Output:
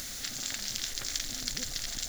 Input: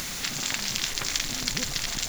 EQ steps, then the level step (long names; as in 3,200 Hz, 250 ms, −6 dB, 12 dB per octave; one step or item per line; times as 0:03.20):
graphic EQ with 15 bands 160 Hz −10 dB, 400 Hz −5 dB, 1,000 Hz −11 dB, 2,500 Hz −7 dB
−4.5 dB